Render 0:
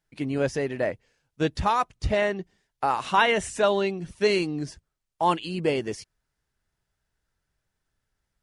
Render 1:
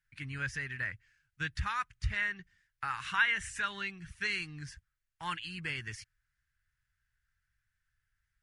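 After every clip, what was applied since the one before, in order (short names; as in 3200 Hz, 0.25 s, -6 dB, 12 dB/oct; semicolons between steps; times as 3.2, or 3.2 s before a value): EQ curve 110 Hz 0 dB, 240 Hz -18 dB, 630 Hz -29 dB, 1600 Hz +6 dB, 3700 Hz -5 dB; in parallel at +1 dB: compressor, threshold -31 dBFS, peak gain reduction 14.5 dB; on the sum: gain -8.5 dB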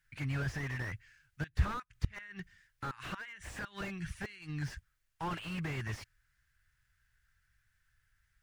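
flipped gate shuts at -23 dBFS, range -25 dB; slew limiter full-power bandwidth 7.2 Hz; gain +7 dB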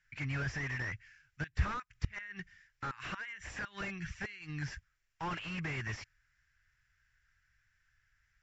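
rippled Chebyshev low-pass 7500 Hz, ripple 6 dB; gain +4 dB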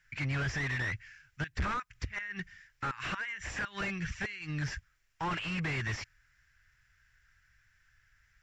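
soft clip -34 dBFS, distortion -9 dB; gain +6.5 dB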